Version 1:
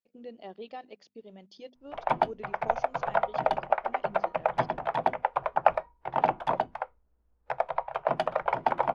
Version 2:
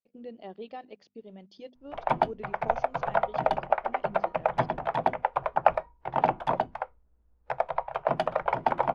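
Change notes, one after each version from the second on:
speech: add distance through air 76 m; master: add bass shelf 270 Hz +5 dB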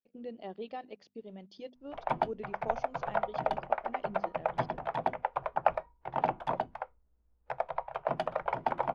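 background -5.5 dB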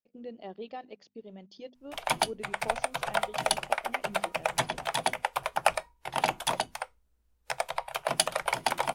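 speech: remove distance through air 76 m; background: remove low-pass 1.1 kHz 12 dB/octave

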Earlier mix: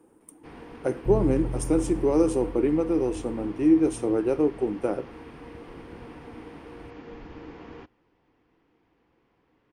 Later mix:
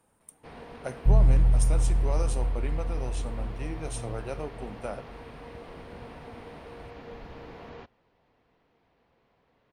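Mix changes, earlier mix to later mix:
speech: add peaking EQ 390 Hz -14 dB 1.9 oct; second sound: remove band-pass filter 280 Hz, Q 0.65; master: add graphic EQ with 31 bands 315 Hz -11 dB, 630 Hz +8 dB, 4 kHz +6 dB

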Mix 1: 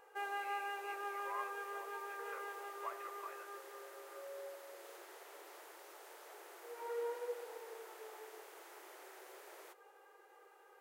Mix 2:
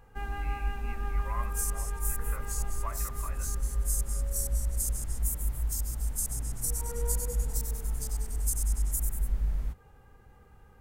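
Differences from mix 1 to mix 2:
speech +5.5 dB; second sound: unmuted; master: remove brick-wall FIR high-pass 330 Hz

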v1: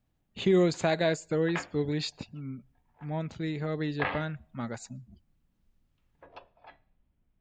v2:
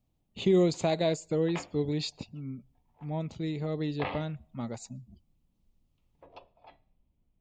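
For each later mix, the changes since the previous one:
master: add peaking EQ 1.6 kHz -13.5 dB 0.6 oct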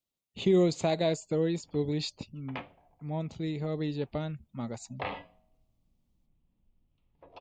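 background: entry +1.00 s; reverb: off

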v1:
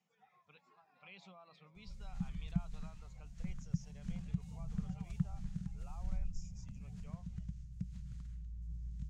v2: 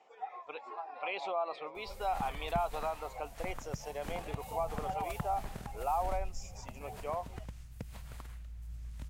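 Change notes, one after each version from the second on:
master: remove FFT filter 110 Hz 0 dB, 180 Hz +9 dB, 310 Hz -22 dB, 520 Hz -25 dB, 800 Hz -28 dB, 1.5 kHz -17 dB, 2.3 kHz -17 dB, 4.7 kHz -12 dB, 6.6 kHz -8 dB, 13 kHz -30 dB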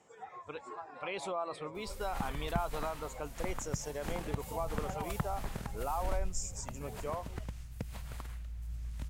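speech: remove cabinet simulation 430–5100 Hz, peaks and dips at 750 Hz +8 dB, 1.6 kHz -5 dB, 2.5 kHz +5 dB; background +3.5 dB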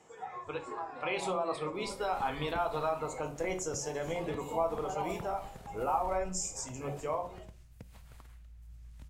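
background -10.5 dB; reverb: on, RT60 0.40 s

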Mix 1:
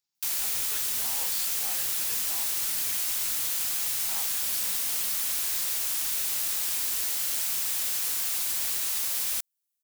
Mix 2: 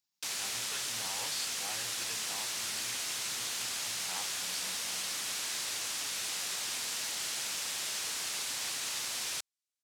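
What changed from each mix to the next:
background: add band-pass 110–6800 Hz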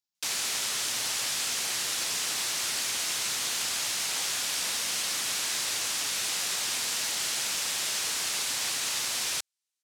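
speech -5.0 dB; background +6.0 dB

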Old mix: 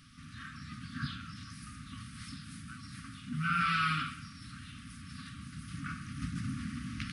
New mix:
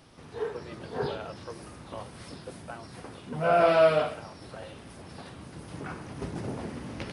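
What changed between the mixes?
speech +5.0 dB; master: remove brick-wall FIR band-stop 290–1100 Hz

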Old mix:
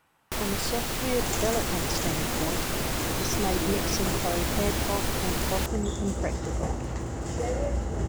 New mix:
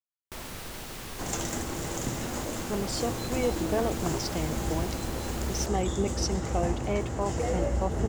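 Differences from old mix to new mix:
speech: entry +2.30 s; first sound -9.5 dB

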